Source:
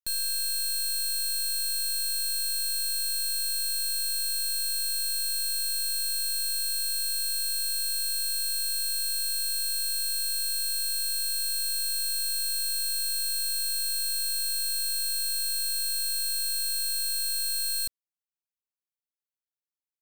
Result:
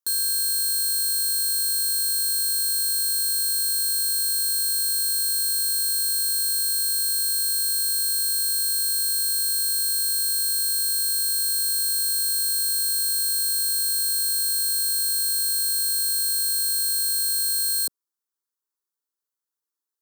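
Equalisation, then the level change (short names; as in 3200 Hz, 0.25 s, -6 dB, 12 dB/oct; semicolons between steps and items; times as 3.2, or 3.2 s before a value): HPF 210 Hz 12 dB/oct; bell 2300 Hz -4.5 dB 0.35 oct; fixed phaser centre 660 Hz, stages 6; +7.5 dB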